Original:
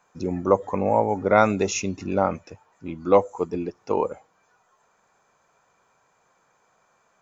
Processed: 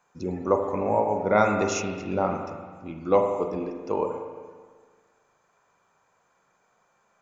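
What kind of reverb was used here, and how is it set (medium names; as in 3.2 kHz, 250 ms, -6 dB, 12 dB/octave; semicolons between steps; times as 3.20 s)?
spring tank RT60 1.6 s, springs 38/43 ms, chirp 75 ms, DRR 3.5 dB; trim -4 dB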